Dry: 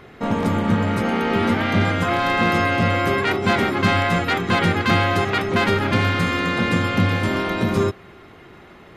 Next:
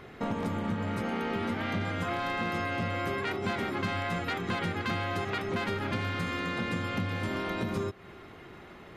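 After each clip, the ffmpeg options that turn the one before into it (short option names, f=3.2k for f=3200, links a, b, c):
-af "acompressor=threshold=-26dB:ratio=4,volume=-4dB"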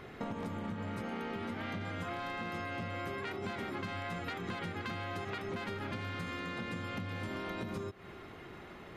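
-af "acompressor=threshold=-35dB:ratio=6,volume=-1dB"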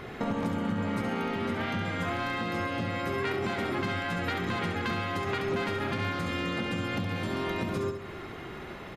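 -af "aecho=1:1:68|136|204|272|340:0.447|0.205|0.0945|0.0435|0.02,volume=7.5dB"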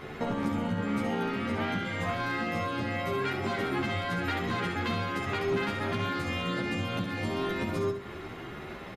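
-filter_complex "[0:a]asplit=2[a][b];[b]adelay=11.5,afreqshift=2.1[c];[a][c]amix=inputs=2:normalize=1,volume=3dB"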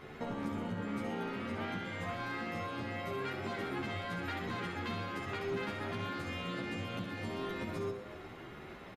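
-filter_complex "[0:a]asplit=7[a][b][c][d][e][f][g];[b]adelay=120,afreqshift=110,volume=-13.5dB[h];[c]adelay=240,afreqshift=220,volume=-18.7dB[i];[d]adelay=360,afreqshift=330,volume=-23.9dB[j];[e]adelay=480,afreqshift=440,volume=-29.1dB[k];[f]adelay=600,afreqshift=550,volume=-34.3dB[l];[g]adelay=720,afreqshift=660,volume=-39.5dB[m];[a][h][i][j][k][l][m]amix=inputs=7:normalize=0,volume=-8dB"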